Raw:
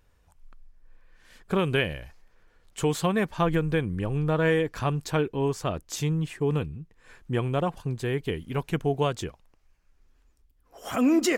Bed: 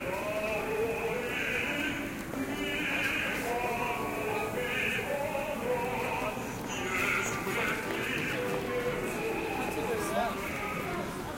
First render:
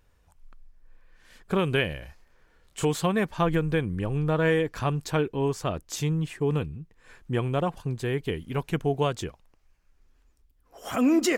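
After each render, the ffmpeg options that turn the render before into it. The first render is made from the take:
-filter_complex "[0:a]asettb=1/sr,asplit=3[s0][s1][s2];[s0]atrim=end=1.994[s3];[s1]atrim=start=1.99:end=2.85,asetpts=PTS-STARTPTS,afade=t=in:d=0.004:c=qsin,afade=t=out:st=0.856:d=0.004:c=qsin,asplit=2[s4][s5];[s5]adelay=28,volume=0.631[s6];[s4][s6]amix=inputs=2:normalize=0,atrim=end_sample=37926[s7];[s2]atrim=start=2.846[s8];[s3][s7]acrossfade=d=0.004:c1=hsin:c2=qsin[s9];[s9][s8]acrossfade=d=0.004:c1=qsin:c2=hsin"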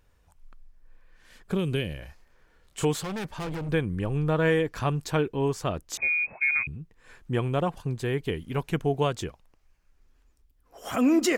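-filter_complex "[0:a]asettb=1/sr,asplit=3[s0][s1][s2];[s0]atrim=end=1.524[s3];[s1]atrim=start=1.52:end=1.99,asetpts=PTS-STARTPTS,afade=t=in:d=0.004:c=qsin,afade=t=out:st=0.466:d=0.004:c=qsin,acrossover=split=430|3000[s4][s5][s6];[s5]acompressor=threshold=0.00501:ratio=2.5:attack=3.2:release=140:knee=2.83:detection=peak[s7];[s4][s7][s6]amix=inputs=3:normalize=0[s8];[s2]atrim=start=1.986[s9];[s3][s8]acrossfade=d=0.004:c1=hsin:c2=qsin[s10];[s10][s9]acrossfade=d=0.004:c1=qsin:c2=hsin,asettb=1/sr,asplit=3[s11][s12][s13];[s11]atrim=end=3.004[s14];[s12]atrim=start=3:end=3.69,asetpts=PTS-STARTPTS,afade=t=in:d=0.004:c=qsin,afade=t=out:st=0.686:d=0.004:c=qsin,asoftclip=type=hard:threshold=0.0282[s15];[s13]atrim=start=3.686[s16];[s14][s15]acrossfade=d=0.004:c1=hsin:c2=qsin[s17];[s17][s16]acrossfade=d=0.004:c1=qsin:c2=hsin,asettb=1/sr,asplit=3[s18][s19][s20];[s18]atrim=end=5.974[s21];[s19]atrim=start=5.97:end=6.67,asetpts=PTS-STARTPTS,afade=t=in:d=0.004:c=qsin,afade=t=out:st=0.696:d=0.004:c=qsin,lowpass=f=2200:t=q:w=0.5098,lowpass=f=2200:t=q:w=0.6013,lowpass=f=2200:t=q:w=0.9,lowpass=f=2200:t=q:w=2.563,afreqshift=-2600[s22];[s20]atrim=start=6.666[s23];[s21][s22]acrossfade=d=0.004:c1=hsin:c2=qsin[s24];[s24][s23]acrossfade=d=0.004:c1=qsin:c2=hsin"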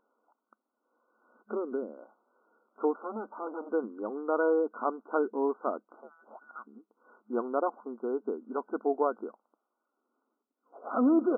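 -af "afftfilt=real='re*between(b*sr/4096,210,1500)':imag='im*between(b*sr/4096,210,1500)':win_size=4096:overlap=0.75,lowshelf=f=350:g=-4.5"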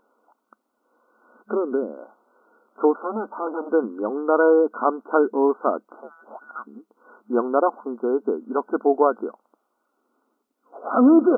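-af "volume=3.16"

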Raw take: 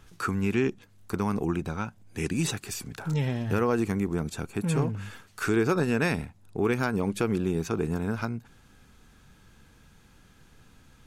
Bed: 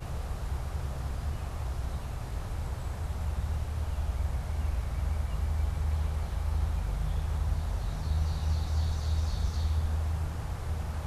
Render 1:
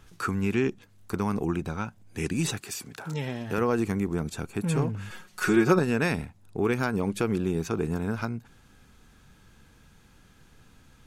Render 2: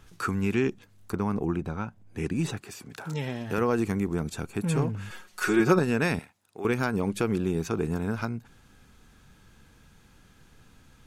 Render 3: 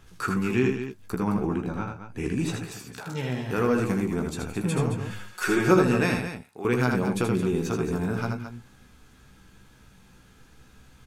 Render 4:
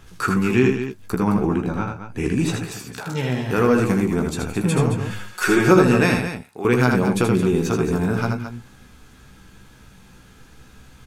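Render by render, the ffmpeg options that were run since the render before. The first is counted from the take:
-filter_complex "[0:a]asettb=1/sr,asplit=3[s0][s1][s2];[s0]atrim=end=2.614[s3];[s1]atrim=start=2.61:end=3.58,asetpts=PTS-STARTPTS,afade=t=in:d=0.004:c=qsin,afade=t=out:st=0.966:d=0.004:c=qsin,highpass=f=250:p=1[s4];[s2]atrim=start=3.576[s5];[s3][s4]acrossfade=d=0.004:c1=hsin:c2=qsin[s6];[s6][s5]acrossfade=d=0.004:c1=qsin:c2=hsin,asettb=1/sr,asplit=3[s7][s8][s9];[s7]atrim=end=5.104[s10];[s8]atrim=start=5.1:end=5.79,asetpts=PTS-STARTPTS,afade=t=in:d=0.004:c=qsin,afade=t=out:st=0.686:d=0.004:c=qsin,aecho=1:1:5.5:0.95,atrim=end_sample=30429[s11];[s9]atrim=start=5.786[s12];[s10][s11]acrossfade=d=0.004:c1=hsin:c2=qsin[s13];[s13][s12]acrossfade=d=0.004:c1=qsin:c2=hsin"
-filter_complex "[0:a]asettb=1/sr,asplit=3[s0][s1][s2];[s0]atrim=end=1.124[s3];[s1]atrim=start=1.12:end=2.9,asetpts=PTS-STARTPTS,afade=t=in:d=0.004:c=qsin,afade=t=out:st=1.776:d=0.004:c=qsin,highshelf=f=2600:g=-10[s4];[s2]atrim=start=2.896[s5];[s3][s4]acrossfade=d=0.004:c1=hsin:c2=qsin[s6];[s6][s5]acrossfade=d=0.004:c1=qsin:c2=hsin,asettb=1/sr,asplit=3[s7][s8][s9];[s7]atrim=end=5.124[s10];[s8]atrim=start=5.12:end=5.6,asetpts=PTS-STARTPTS,afade=t=in:d=0.004:c=qsin,afade=t=out:st=0.476:d=0.004:c=qsin,equalizer=f=150:t=o:w=0.77:g=-12.5[s11];[s9]atrim=start=5.596[s12];[s10][s11]acrossfade=d=0.004:c1=hsin:c2=qsin[s13];[s13][s12]acrossfade=d=0.004:c1=qsin:c2=hsin,asettb=1/sr,asplit=3[s14][s15][s16];[s14]atrim=end=6.194[s17];[s15]atrim=start=6.19:end=6.65,asetpts=PTS-STARTPTS,afade=t=in:d=0.004:c=qsin,afade=t=out:st=0.456:d=0.004:c=qsin,highpass=f=1100:p=1[s18];[s16]atrim=start=6.646[s19];[s17][s18]acrossfade=d=0.004:c1=hsin:c2=qsin[s20];[s20][s19]acrossfade=d=0.004:c1=qsin:c2=hsin"
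-filter_complex "[0:a]asplit=2[s0][s1];[s1]adelay=16,volume=0.473[s2];[s0][s2]amix=inputs=2:normalize=0,asplit=2[s3][s4];[s4]aecho=0:1:78.72|218.7:0.562|0.316[s5];[s3][s5]amix=inputs=2:normalize=0"
-af "volume=2.11,alimiter=limit=0.708:level=0:latency=1"

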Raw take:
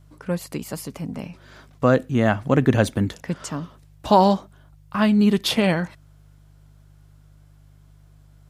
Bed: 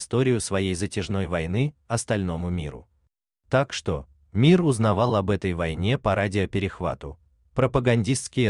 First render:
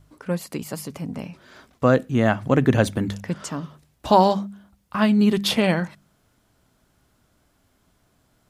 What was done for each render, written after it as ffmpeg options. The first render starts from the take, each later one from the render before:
-af "bandreject=f=50:t=h:w=4,bandreject=f=100:t=h:w=4,bandreject=f=150:t=h:w=4,bandreject=f=200:t=h:w=4"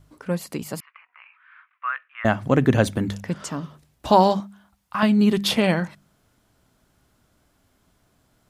-filter_complex "[0:a]asettb=1/sr,asplit=3[s0][s1][s2];[s0]atrim=end=0.804[s3];[s1]atrim=start=0.8:end=2.25,asetpts=PTS-STARTPTS,afade=t=in:d=0.004:c=qsin,afade=t=out:st=1.446:d=0.004:c=qsin,asuperpass=centerf=1700:order=8:qfactor=1.1[s4];[s2]atrim=start=2.246[s5];[s3][s4]acrossfade=d=0.004:c1=hsin:c2=qsin[s6];[s6][s5]acrossfade=d=0.004:c1=qsin:c2=hsin,asettb=1/sr,asplit=3[s7][s8][s9];[s7]atrim=end=4.404[s10];[s8]atrim=start=4.4:end=5.03,asetpts=PTS-STARTPTS,afade=t=in:d=0.004:c=qsin,afade=t=out:st=0.626:d=0.004:c=qsin,lowshelf=f=640:t=q:w=1.5:g=-6.5[s11];[s9]atrim=start=5.026[s12];[s10][s11]acrossfade=d=0.004:c1=hsin:c2=qsin[s13];[s13][s12]acrossfade=d=0.004:c1=qsin:c2=hsin"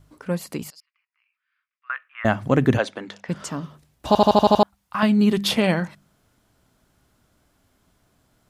-filter_complex "[0:a]asettb=1/sr,asplit=3[s0][s1][s2];[s0]atrim=end=0.704[s3];[s1]atrim=start=0.7:end=1.9,asetpts=PTS-STARTPTS,afade=t=in:d=0.004:c=qsin,afade=t=out:st=1.196:d=0.004:c=qsin,bandpass=f=5000:t=q:w=6.4[s4];[s2]atrim=start=1.896[s5];[s3][s4]acrossfade=d=0.004:c1=hsin:c2=qsin[s6];[s6][s5]acrossfade=d=0.004:c1=qsin:c2=hsin,asplit=3[s7][s8][s9];[s7]afade=t=out:st=2.77:d=0.02[s10];[s8]highpass=500,lowpass=4700,afade=t=in:st=2.77:d=0.02,afade=t=out:st=3.28:d=0.02[s11];[s9]afade=t=in:st=3.28:d=0.02[s12];[s10][s11][s12]amix=inputs=3:normalize=0,asplit=8[s13][s14][s15][s16][s17][s18][s19][s20];[s13]atrim=end=4.152[s21];[s14]atrim=start=4.068:end=4.152[s22];[s15]atrim=start=4.068:end=4.152[s23];[s16]atrim=start=4.068:end=4.152[s24];[s17]atrim=start=4.068:end=4.152[s25];[s18]atrim=start=4.068:end=4.152[s26];[s19]atrim=start=4.068:end=4.152[s27];[s20]atrim=start=4.628[s28];[s21][s22]acrossfade=d=0.004:c1=hsin:c2=hsin[s29];[s29][s23]acrossfade=d=0.004:c1=hsin:c2=hsin[s30];[s30][s24]acrossfade=d=0.004:c1=hsin:c2=hsin[s31];[s31][s25]acrossfade=d=0.004:c1=hsin:c2=hsin[s32];[s32][s26]acrossfade=d=0.004:c1=hsin:c2=hsin[s33];[s33][s27]acrossfade=d=0.004:c1=hsin:c2=hsin[s34];[s34][s28]acrossfade=d=0.004:c1=hsin:c2=hsin"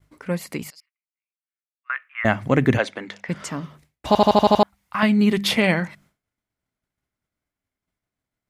-af "agate=range=0.0224:threshold=0.00355:ratio=3:detection=peak,equalizer=f=2100:t=o:w=0.43:g=9"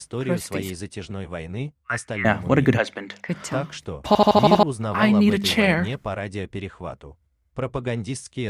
-filter_complex "[1:a]volume=0.501[s0];[0:a][s0]amix=inputs=2:normalize=0"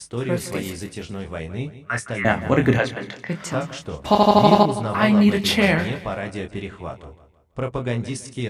-filter_complex "[0:a]asplit=2[s0][s1];[s1]adelay=25,volume=0.501[s2];[s0][s2]amix=inputs=2:normalize=0,aecho=1:1:165|330|495|660:0.178|0.0711|0.0285|0.0114"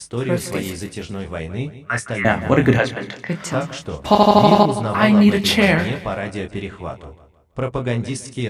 -af "volume=1.41,alimiter=limit=0.891:level=0:latency=1"

